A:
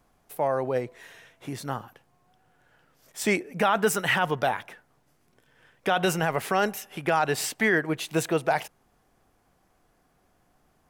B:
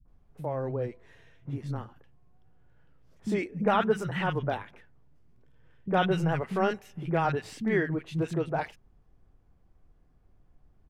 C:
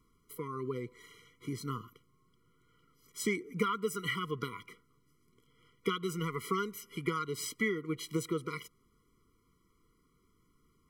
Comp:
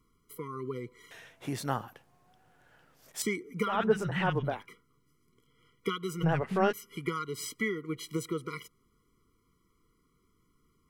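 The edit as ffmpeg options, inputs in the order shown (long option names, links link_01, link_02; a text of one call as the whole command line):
ffmpeg -i take0.wav -i take1.wav -i take2.wav -filter_complex "[1:a]asplit=2[link_01][link_02];[2:a]asplit=4[link_03][link_04][link_05][link_06];[link_03]atrim=end=1.112[link_07];[0:a]atrim=start=1.108:end=3.222[link_08];[link_04]atrim=start=3.218:end=3.88[link_09];[link_01]atrim=start=3.64:end=4.67[link_10];[link_05]atrim=start=4.43:end=6.24[link_11];[link_02]atrim=start=6.22:end=6.73[link_12];[link_06]atrim=start=6.71[link_13];[link_07][link_08]acrossfade=duration=0.004:curve1=hsin:curve2=hsin[link_14];[link_14][link_09]acrossfade=duration=0.004:curve1=hsin:curve2=hsin[link_15];[link_15][link_10]acrossfade=duration=0.24:curve1=tri:curve2=tri[link_16];[link_16][link_11]acrossfade=duration=0.24:curve1=tri:curve2=tri[link_17];[link_17][link_12]acrossfade=duration=0.02:curve1=tri:curve2=tri[link_18];[link_18][link_13]acrossfade=duration=0.02:curve1=tri:curve2=tri" out.wav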